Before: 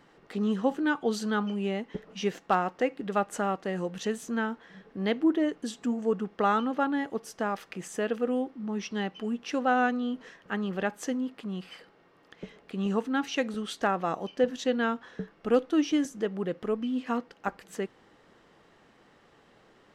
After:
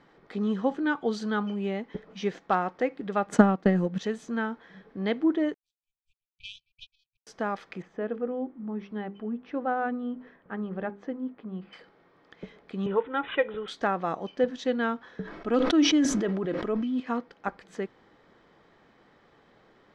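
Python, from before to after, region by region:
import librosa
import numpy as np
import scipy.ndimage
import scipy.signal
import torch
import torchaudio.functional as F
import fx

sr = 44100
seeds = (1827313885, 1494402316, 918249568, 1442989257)

y = fx.chain(x, sr, fx.peak_eq(hz=200.0, db=9.5, octaves=1.1),
    fx.transient(attack_db=11, sustain_db=-5), at=(3.27, 3.99))
y = fx.chain(y, sr, fx.low_shelf_res(hz=470.0, db=-8.5, q=1.5),
    fx.power_curve(exponent=3.0),
    fx.brickwall_bandstop(low_hz=150.0, high_hz=2300.0), at=(5.54, 7.27))
y = fx.chain(y, sr, fx.spacing_loss(db_at_10k=39),
    fx.hum_notches(base_hz=50, count=9), at=(7.82, 11.73))
y = fx.chain(y, sr, fx.notch(hz=3400.0, q=7.6),
    fx.comb(ms=2.1, depth=0.93),
    fx.resample_bad(factor=6, down='none', up='filtered'), at=(12.86, 13.68))
y = fx.chain(y, sr, fx.comb(ms=3.1, depth=0.35),
    fx.sustainer(db_per_s=27.0), at=(15.22, 17.0))
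y = scipy.signal.sosfilt(scipy.signal.butter(2, 4700.0, 'lowpass', fs=sr, output='sos'), y)
y = fx.notch(y, sr, hz=2800.0, q=10.0)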